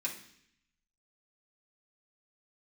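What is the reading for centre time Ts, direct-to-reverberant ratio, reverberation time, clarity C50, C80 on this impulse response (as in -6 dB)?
19 ms, -5.5 dB, 0.65 s, 8.5 dB, 12.5 dB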